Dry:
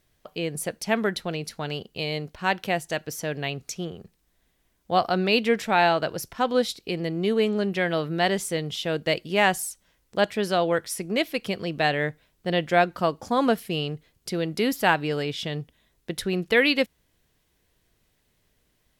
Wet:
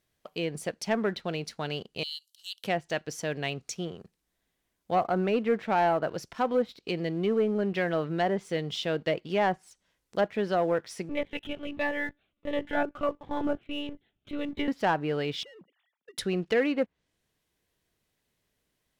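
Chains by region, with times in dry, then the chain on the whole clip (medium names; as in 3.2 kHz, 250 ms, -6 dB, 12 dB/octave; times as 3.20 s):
2.03–2.64 s: rippled Chebyshev high-pass 2.9 kHz, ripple 3 dB + treble shelf 9.4 kHz +12 dB
11.09–14.68 s: monotone LPC vocoder at 8 kHz 290 Hz + Shepard-style phaser falling 1.5 Hz
15.43–16.18 s: formants replaced by sine waves + compression 10:1, threshold -44 dBFS
whole clip: low-pass that closes with the level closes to 1.3 kHz, closed at -18.5 dBFS; bass shelf 72 Hz -9.5 dB; waveshaping leveller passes 1; trim -5.5 dB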